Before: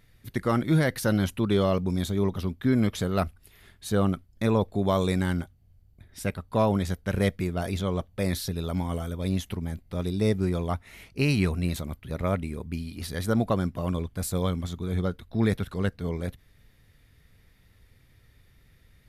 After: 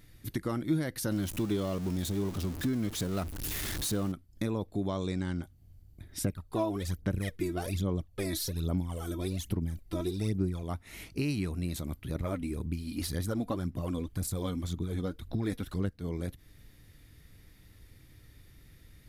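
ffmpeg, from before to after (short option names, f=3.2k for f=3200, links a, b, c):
-filter_complex "[0:a]asettb=1/sr,asplit=3[a][b][c];[a]atrim=end=1.114[d];[b]atrim=start=1.11:end=4.12,asetpts=PTS-STARTPTS,afade=t=in:d=0.004:c=qsin,afade=t=out:st=3.006:d=0.004:c=qsin,aeval=exprs='val(0)+0.5*0.0316*sgn(val(0))':c=same[e];[c]atrim=start=4.116[f];[d][e]acrossfade=d=0.004:c1=hsin:c2=qsin[g];[g][f]acrossfade=d=0.004:c1=qsin:c2=hsin,asplit=3[h][i][j];[h]afade=t=out:st=4.87:d=0.02[k];[i]lowpass=f=7.4k:w=0.5412,lowpass=f=7.4k:w=1.3066,afade=t=in:st=4.87:d=0.02,afade=t=out:st=5.42:d=0.02[l];[j]afade=t=in:st=5.42:d=0.02[m];[k][l][m]amix=inputs=3:normalize=0,asettb=1/sr,asplit=3[n][o][p];[n]atrim=end=6.244[q];[o]atrim=start=6.24:end=10.63,asetpts=PTS-STARTPTS,afade=t=in:d=0.004:c=qsin,afade=t=out:st=4.386:d=0.004:c=qsin,aphaser=in_gain=1:out_gain=1:delay=3.1:decay=0.72:speed=1.2:type=sinusoidal[r];[p]atrim=start=10.626[s];[q][r]acrossfade=d=0.004:c1=hsin:c2=qsin[t];[t][s]acrossfade=d=0.004:c1=qsin:c2=hsin,asettb=1/sr,asplit=3[u][v][w];[u]atrim=end=12.154[x];[v]atrim=start=12.15:end=15.93,asetpts=PTS-STARTPTS,afade=t=in:d=0.004:c=qsin,afade=t=out:st=3.776:d=0.004:c=qsin,aphaser=in_gain=1:out_gain=1:delay=4.2:decay=0.51:speed=1.9:type=sinusoidal[y];[w]atrim=start=15.926[z];[x][y]acrossfade=d=0.004:c1=hsin:c2=qsin[aa];[aa][z]acrossfade=d=0.004:c1=qsin:c2=hsin,bass=f=250:g=3,treble=f=4k:g=6,acompressor=threshold=-34dB:ratio=3,equalizer=f=310:w=4.4:g=9"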